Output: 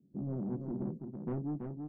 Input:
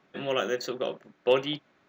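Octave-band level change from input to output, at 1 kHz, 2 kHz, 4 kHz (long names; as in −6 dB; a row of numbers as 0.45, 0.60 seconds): −17.0 dB, below −30 dB, below −40 dB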